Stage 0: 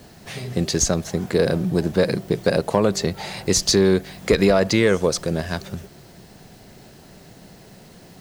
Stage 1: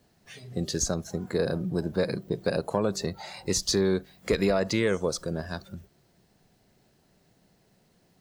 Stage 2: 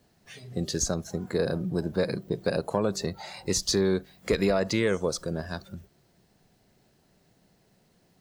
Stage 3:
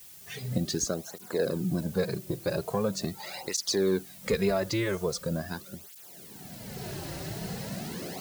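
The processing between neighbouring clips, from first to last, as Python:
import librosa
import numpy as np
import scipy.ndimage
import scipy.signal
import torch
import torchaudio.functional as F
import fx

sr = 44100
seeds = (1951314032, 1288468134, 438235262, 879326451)

y1 = fx.noise_reduce_blind(x, sr, reduce_db=11)
y1 = F.gain(torch.from_numpy(y1), -8.0).numpy()
y2 = y1
y3 = fx.recorder_agc(y2, sr, target_db=-18.0, rise_db_per_s=22.0, max_gain_db=30)
y3 = fx.dmg_noise_colour(y3, sr, seeds[0], colour='blue', level_db=-46.0)
y3 = fx.flanger_cancel(y3, sr, hz=0.42, depth_ms=4.8)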